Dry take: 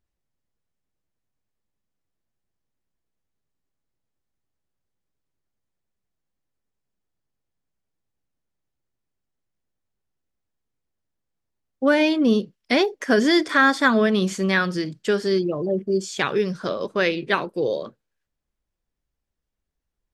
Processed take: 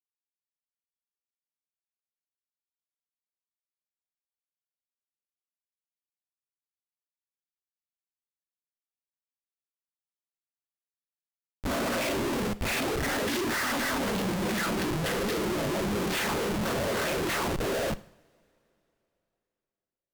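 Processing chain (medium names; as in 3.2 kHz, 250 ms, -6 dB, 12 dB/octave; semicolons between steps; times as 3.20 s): reverse spectral sustain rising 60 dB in 0.33 s; recorder AGC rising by 8.3 dB/s; low-pass 3.7 kHz 12 dB/octave; treble shelf 2.7 kHz +7 dB; noise-vocoded speech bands 16; phase dispersion lows, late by 73 ms, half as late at 1.3 kHz; flange 0.23 Hz, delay 7 ms, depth 8.1 ms, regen -87%; Schmitt trigger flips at -34.5 dBFS; two-slope reverb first 0.56 s, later 3.2 s, from -22 dB, DRR 15 dB; AAC 192 kbps 48 kHz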